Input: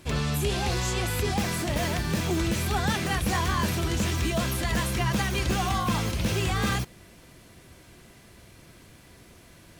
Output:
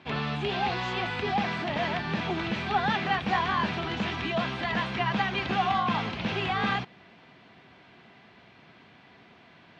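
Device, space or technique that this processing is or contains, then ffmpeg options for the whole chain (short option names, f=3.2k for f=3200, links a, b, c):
kitchen radio: -af "highpass=200,equalizer=f=330:t=q:w=4:g=-7,equalizer=f=530:t=q:w=4:g=-7,equalizer=f=790:t=q:w=4:g=5,lowpass=f=3.6k:w=0.5412,lowpass=f=3.6k:w=1.3066,volume=1.5dB"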